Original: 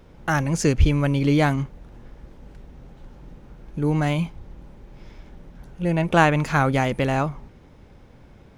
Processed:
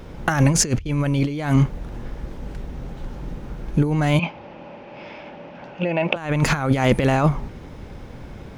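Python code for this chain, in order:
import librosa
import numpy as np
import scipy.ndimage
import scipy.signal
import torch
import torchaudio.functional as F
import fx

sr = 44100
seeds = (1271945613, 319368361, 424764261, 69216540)

y = fx.over_compress(x, sr, threshold_db=-24.0, ratio=-0.5)
y = fx.cabinet(y, sr, low_hz=260.0, low_slope=12, high_hz=4600.0, hz=(410.0, 590.0, 860.0, 2600.0, 3900.0), db=(-5, 8, 5, 9, -5), at=(4.19, 6.16))
y = y * librosa.db_to_amplitude(6.5)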